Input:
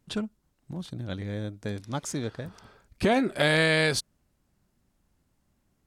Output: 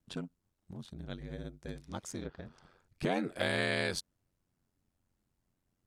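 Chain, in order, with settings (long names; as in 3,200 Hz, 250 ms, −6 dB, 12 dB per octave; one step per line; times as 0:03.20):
ring modulation 45 Hz
0:02.20–0:03.03: treble cut that deepens with the level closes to 1,900 Hz, closed at −30 dBFS
level −6.5 dB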